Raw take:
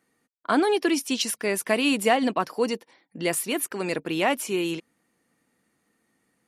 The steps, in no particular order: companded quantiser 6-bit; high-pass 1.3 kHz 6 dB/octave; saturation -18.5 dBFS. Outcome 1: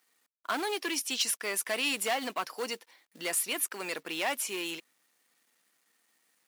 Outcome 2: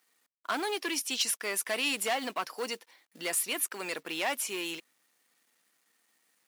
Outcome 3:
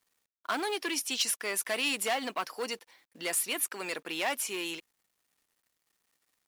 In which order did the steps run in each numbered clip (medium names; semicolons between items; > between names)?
saturation > companded quantiser > high-pass; companded quantiser > saturation > high-pass; saturation > high-pass > companded quantiser